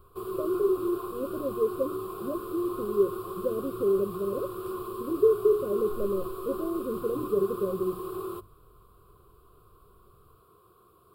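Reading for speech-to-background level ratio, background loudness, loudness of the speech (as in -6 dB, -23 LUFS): 7.0 dB, -36.5 LUFS, -29.5 LUFS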